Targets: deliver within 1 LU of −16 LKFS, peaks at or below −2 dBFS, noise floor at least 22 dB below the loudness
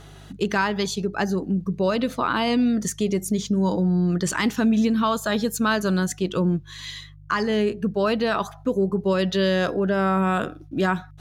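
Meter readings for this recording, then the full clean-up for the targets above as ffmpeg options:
mains hum 50 Hz; hum harmonics up to 150 Hz; level of the hum −43 dBFS; integrated loudness −23.0 LKFS; sample peak −11.0 dBFS; target loudness −16.0 LKFS
→ -af "bandreject=frequency=50:width_type=h:width=4,bandreject=frequency=100:width_type=h:width=4,bandreject=frequency=150:width_type=h:width=4"
-af "volume=7dB"

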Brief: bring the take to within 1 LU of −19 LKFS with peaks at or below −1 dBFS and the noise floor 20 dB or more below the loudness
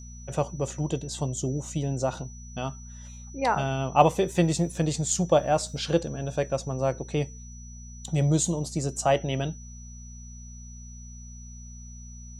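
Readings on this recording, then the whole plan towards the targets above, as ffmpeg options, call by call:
mains hum 60 Hz; hum harmonics up to 240 Hz; level of the hum −40 dBFS; interfering tone 5,900 Hz; level of the tone −48 dBFS; integrated loudness −27.0 LKFS; sample peak −4.5 dBFS; target loudness −19.0 LKFS
→ -af "bandreject=frequency=60:width_type=h:width=4,bandreject=frequency=120:width_type=h:width=4,bandreject=frequency=180:width_type=h:width=4,bandreject=frequency=240:width_type=h:width=4"
-af "bandreject=frequency=5900:width=30"
-af "volume=8dB,alimiter=limit=-1dB:level=0:latency=1"

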